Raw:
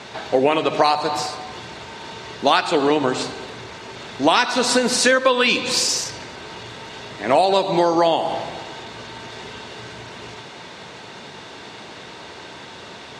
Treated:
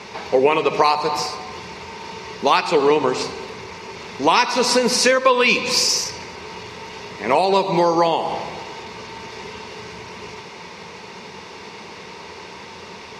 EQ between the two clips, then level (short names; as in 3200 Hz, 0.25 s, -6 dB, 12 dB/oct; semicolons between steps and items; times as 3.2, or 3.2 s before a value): ripple EQ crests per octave 0.83, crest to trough 8 dB; 0.0 dB